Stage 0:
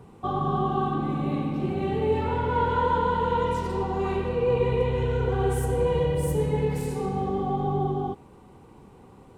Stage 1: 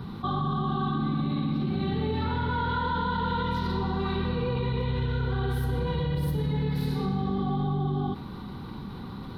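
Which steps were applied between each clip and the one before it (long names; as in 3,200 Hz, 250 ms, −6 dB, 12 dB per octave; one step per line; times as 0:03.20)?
drawn EQ curve 100 Hz 0 dB, 210 Hz +4 dB, 470 Hz −10 dB, 710 Hz −8 dB, 1,400 Hz +3 dB, 2,700 Hz −5 dB, 3,900 Hz +12 dB, 7,700 Hz −21 dB, 12,000 Hz −2 dB
brickwall limiter −21 dBFS, peak gain reduction 7 dB
envelope flattener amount 50%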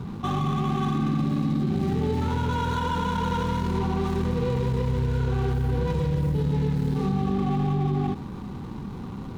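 running median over 25 samples
level +3.5 dB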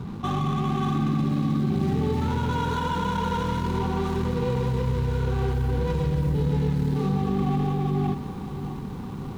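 feedback echo at a low word length 619 ms, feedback 55%, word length 8 bits, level −11.5 dB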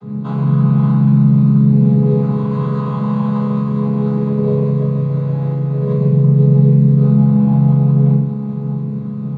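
channel vocoder with a chord as carrier minor triad, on C#3
convolution reverb RT60 0.40 s, pre-delay 3 ms, DRR −8.5 dB
level −3 dB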